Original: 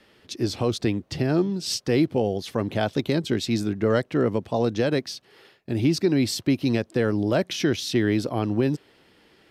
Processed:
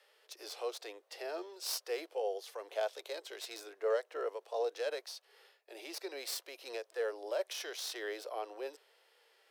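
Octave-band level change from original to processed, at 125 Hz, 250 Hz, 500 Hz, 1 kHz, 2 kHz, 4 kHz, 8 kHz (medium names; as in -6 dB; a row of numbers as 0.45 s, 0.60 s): under -40 dB, -31.5 dB, -12.0 dB, -10.5 dB, -12.5 dB, -11.5 dB, -9.5 dB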